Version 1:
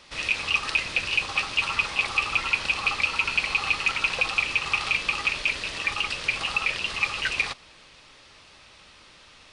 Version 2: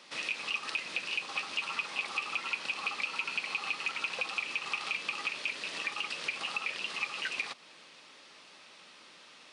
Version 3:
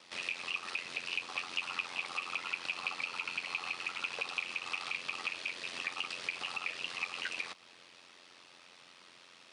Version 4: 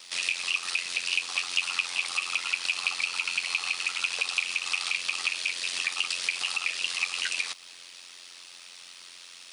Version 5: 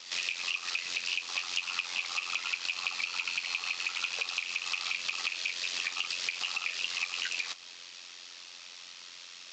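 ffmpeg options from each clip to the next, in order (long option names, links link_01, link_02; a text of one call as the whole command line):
ffmpeg -i in.wav -af "highpass=frequency=180:width=0.5412,highpass=frequency=180:width=1.3066,acompressor=threshold=-33dB:ratio=2,volume=-3dB" out.wav
ffmpeg -i in.wav -af "aeval=exprs='val(0)*sin(2*PI*44*n/s)':channel_layout=same" out.wav
ffmpeg -i in.wav -af "crystalizer=i=9:c=0,volume=-2.5dB" out.wav
ffmpeg -i in.wav -af "acompressor=threshold=-30dB:ratio=3" -ar 16000 -c:a aac -b:a 48k out.aac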